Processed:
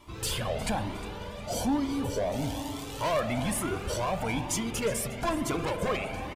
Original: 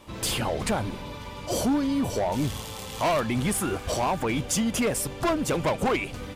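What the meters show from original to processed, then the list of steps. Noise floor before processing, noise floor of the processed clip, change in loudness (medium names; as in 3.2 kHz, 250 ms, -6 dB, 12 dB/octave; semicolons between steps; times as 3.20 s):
-39 dBFS, -40 dBFS, -4.0 dB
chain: feedback delay 359 ms, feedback 36%, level -16 dB; spring tank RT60 3.8 s, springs 43 ms, chirp 35 ms, DRR 6.5 dB; Shepard-style flanger rising 1.1 Hz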